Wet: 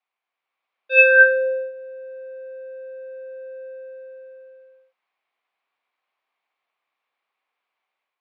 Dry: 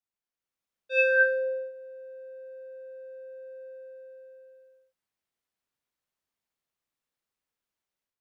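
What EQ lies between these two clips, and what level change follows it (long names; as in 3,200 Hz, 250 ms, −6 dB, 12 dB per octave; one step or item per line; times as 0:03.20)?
loudspeaker in its box 460–3,700 Hz, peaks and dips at 750 Hz +7 dB, 1,100 Hz +8 dB, 2,300 Hz +8 dB
+8.5 dB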